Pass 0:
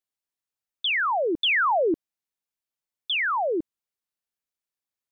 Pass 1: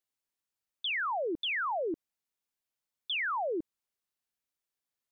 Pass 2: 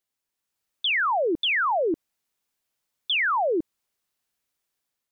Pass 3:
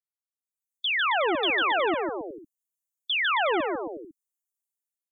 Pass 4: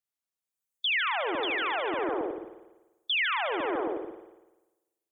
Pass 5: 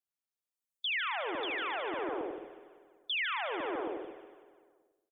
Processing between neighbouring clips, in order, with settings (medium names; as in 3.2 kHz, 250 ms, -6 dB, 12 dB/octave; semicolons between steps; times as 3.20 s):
peak limiter -29 dBFS, peak gain reduction 10.5 dB
level rider gain up to 5 dB; trim +4 dB
expander on every frequency bin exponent 3; bouncing-ball echo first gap 150 ms, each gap 0.8×, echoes 5
peak limiter -25.5 dBFS, peak gain reduction 10 dB; on a send at -6.5 dB: reverberation RT60 1.1 s, pre-delay 49 ms; on the sum: trim +2 dB
feedback delay 189 ms, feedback 56%, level -16 dB; trim -6 dB